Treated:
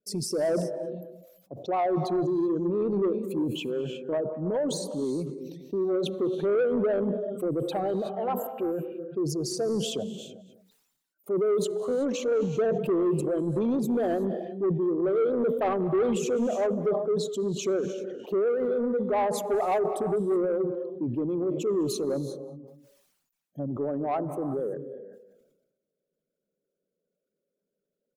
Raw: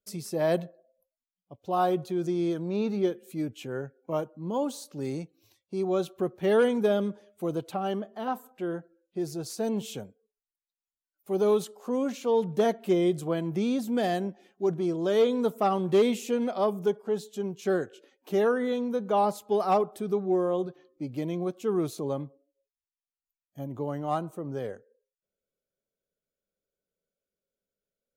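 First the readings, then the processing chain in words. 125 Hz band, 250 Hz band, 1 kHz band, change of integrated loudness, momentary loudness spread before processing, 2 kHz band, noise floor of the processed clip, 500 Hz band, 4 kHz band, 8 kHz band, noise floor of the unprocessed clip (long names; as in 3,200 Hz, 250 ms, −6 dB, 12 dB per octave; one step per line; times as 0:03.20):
+1.5 dB, +1.0 dB, −1.5 dB, +1.0 dB, 12 LU, −3.0 dB, −84 dBFS, +1.5 dB, +2.0 dB, +5.0 dB, below −85 dBFS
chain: spectral envelope exaggerated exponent 2
pitch vibrato 7 Hz 57 cents
in parallel at 0 dB: downward compressor, threshold −34 dBFS, peak gain reduction 15 dB
on the sum: low shelf with overshoot 110 Hz −13 dB, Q 1.5
reverb whose tail is shaped and stops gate 400 ms rising, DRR 10.5 dB
soft clipping −19 dBFS, distortion −15 dB
on a send: single-tap delay 202 ms −22.5 dB
on the sum: level that may fall only so fast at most 54 dB per second
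level −1 dB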